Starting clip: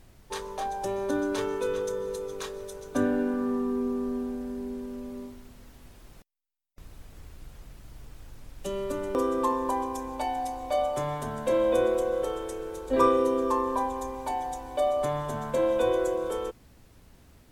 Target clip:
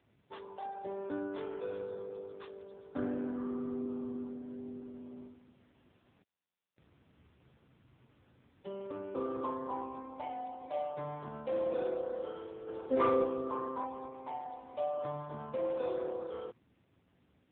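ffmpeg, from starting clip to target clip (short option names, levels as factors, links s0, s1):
-filter_complex "[0:a]asplit=3[s0][s1][s2];[s0]afade=t=out:st=12.66:d=0.02[s3];[s1]acontrast=47,afade=t=in:st=12.66:d=0.02,afade=t=out:st=13.23:d=0.02[s4];[s2]afade=t=in:st=13.23:d=0.02[s5];[s3][s4][s5]amix=inputs=3:normalize=0,asoftclip=type=tanh:threshold=0.299,volume=0.376" -ar 8000 -c:a libopencore_amrnb -b:a 5900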